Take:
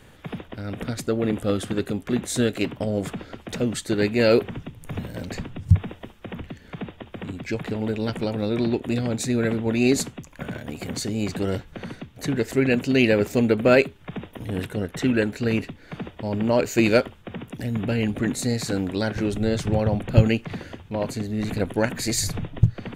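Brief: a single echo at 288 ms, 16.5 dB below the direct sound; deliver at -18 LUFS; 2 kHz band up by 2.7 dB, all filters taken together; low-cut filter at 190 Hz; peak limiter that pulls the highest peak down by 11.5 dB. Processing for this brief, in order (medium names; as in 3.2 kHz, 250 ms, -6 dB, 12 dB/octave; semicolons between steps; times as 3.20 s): high-pass 190 Hz; peaking EQ 2 kHz +3.5 dB; peak limiter -13.5 dBFS; delay 288 ms -16.5 dB; trim +10 dB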